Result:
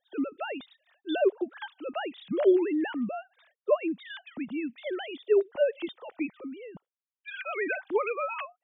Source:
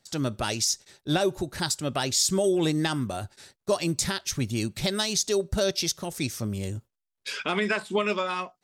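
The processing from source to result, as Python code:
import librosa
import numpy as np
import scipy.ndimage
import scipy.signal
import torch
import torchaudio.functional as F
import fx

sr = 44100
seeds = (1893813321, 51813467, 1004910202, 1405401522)

y = fx.sine_speech(x, sr)
y = y * librosa.db_to_amplitude(-2.5)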